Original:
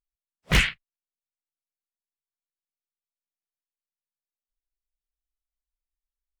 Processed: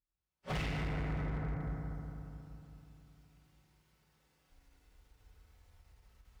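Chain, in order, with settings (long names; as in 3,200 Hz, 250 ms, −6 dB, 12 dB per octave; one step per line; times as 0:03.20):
lower of the sound and its delayed copy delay 5.3 ms
camcorder AGC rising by 30 dB per second
high-pass filter 52 Hz 12 dB per octave
low-shelf EQ 90 Hz +11 dB
feedback delay network reverb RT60 3.1 s, low-frequency decay 1.2×, high-frequency decay 0.35×, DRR −3.5 dB
downward compressor 6 to 1, threshold −26 dBFS, peak gain reduction 14.5 dB
low-pass filter 2,300 Hz 6 dB per octave
on a send: flutter between parallel walls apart 9.3 metres, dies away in 0.29 s
on the sum: gain into a clipping stage and back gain 29.5 dB
every ending faded ahead of time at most 220 dB per second
level −3.5 dB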